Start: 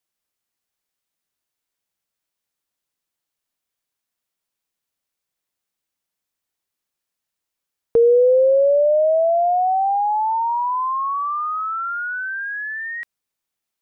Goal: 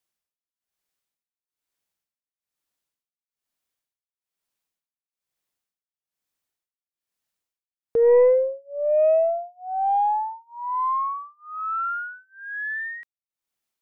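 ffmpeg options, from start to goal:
-af "tremolo=f=1.1:d=0.99,aeval=exprs='0.335*(cos(1*acos(clip(val(0)/0.335,-1,1)))-cos(1*PI/2))+0.0473*(cos(2*acos(clip(val(0)/0.335,-1,1)))-cos(2*PI/2))+0.0168*(cos(4*acos(clip(val(0)/0.335,-1,1)))-cos(4*PI/2))+0.00211*(cos(5*acos(clip(val(0)/0.335,-1,1)))-cos(5*PI/2))':c=same,volume=-1dB"

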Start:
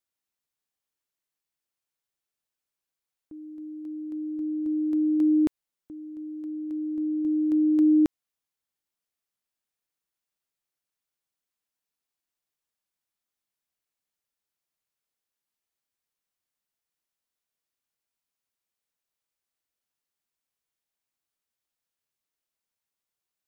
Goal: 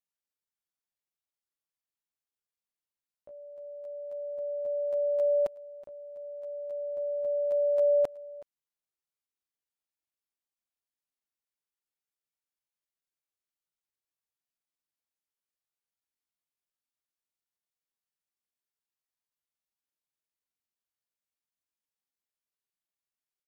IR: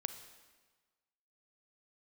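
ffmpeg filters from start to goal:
-af "asetrate=83250,aresample=44100,atempo=0.529732,aecho=1:1:373:0.1,volume=-5dB"

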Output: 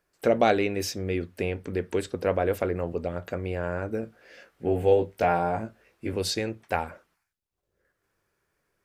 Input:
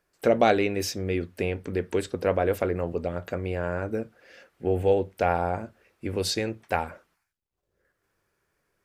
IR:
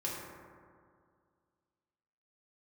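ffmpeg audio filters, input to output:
-filter_complex "[0:a]asettb=1/sr,asplit=3[a][b][c];[a]atrim=end=4.014[d];[b]atrim=start=4.01:end=6.13,asetpts=PTS-STARTPTS,afade=t=in:d=0.004:c=qsin,afade=t=out:st=2.116:d=0.004:c=qsin,asplit=2[e][f];[f]adelay=18,volume=-3dB[g];[e][g]amix=inputs=2:normalize=0,atrim=end_sample=93492[h];[c]atrim=start=6.126[i];[d][h]acrossfade=d=0.004:c1=hsin:c2=qsin[j];[j][i]acrossfade=d=0.004:c1=qsin:c2=hsin,volume=-1dB"

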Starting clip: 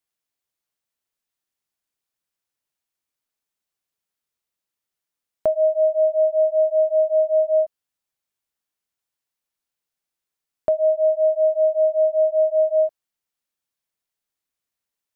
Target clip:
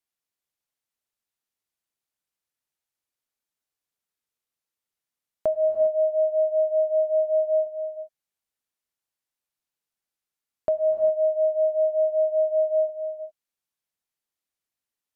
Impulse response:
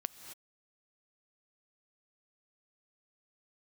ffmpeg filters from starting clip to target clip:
-filter_complex "[1:a]atrim=start_sample=2205,asetrate=29547,aresample=44100[a];[0:a][a]afir=irnorm=-1:irlink=0,volume=-4dB"

